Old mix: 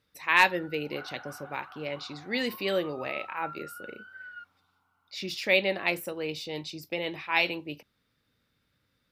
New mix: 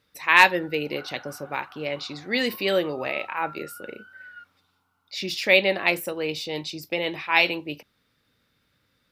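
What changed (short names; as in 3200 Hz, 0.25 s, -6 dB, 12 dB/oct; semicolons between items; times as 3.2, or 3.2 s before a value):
speech +6.0 dB; master: add low shelf 230 Hz -3.5 dB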